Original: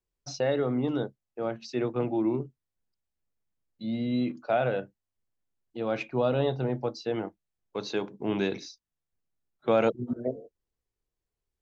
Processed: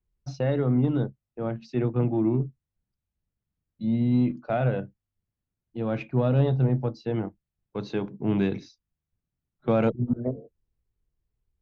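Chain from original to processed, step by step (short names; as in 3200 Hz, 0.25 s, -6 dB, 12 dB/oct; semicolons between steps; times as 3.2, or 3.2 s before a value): tone controls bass +14 dB, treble -10 dB; added harmonics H 6 -33 dB, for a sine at -9.5 dBFS; gain -2 dB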